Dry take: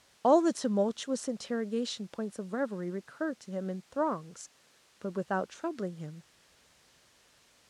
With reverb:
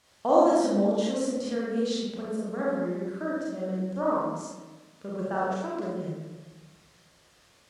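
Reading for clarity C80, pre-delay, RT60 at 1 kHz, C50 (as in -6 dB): 1.5 dB, 30 ms, 1.1 s, -2.5 dB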